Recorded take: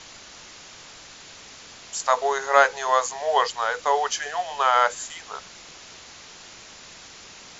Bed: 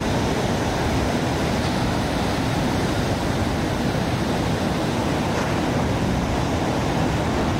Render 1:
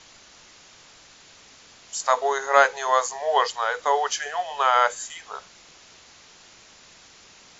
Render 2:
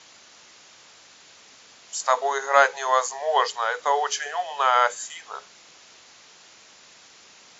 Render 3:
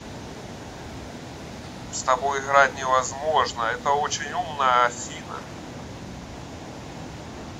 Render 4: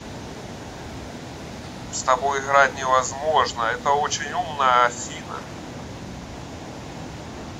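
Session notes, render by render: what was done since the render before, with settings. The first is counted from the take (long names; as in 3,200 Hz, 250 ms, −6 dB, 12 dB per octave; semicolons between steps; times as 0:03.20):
noise reduction from a noise print 6 dB
high-pass filter 210 Hz 6 dB per octave; mains-hum notches 60/120/180/240/300/360/420 Hz
mix in bed −16 dB
level +2 dB; brickwall limiter −2 dBFS, peak gain reduction 2 dB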